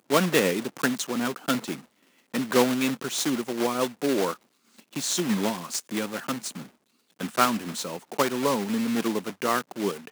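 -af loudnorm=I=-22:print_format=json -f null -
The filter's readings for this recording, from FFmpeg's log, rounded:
"input_i" : "-26.8",
"input_tp" : "-5.0",
"input_lra" : "2.5",
"input_thresh" : "-37.2",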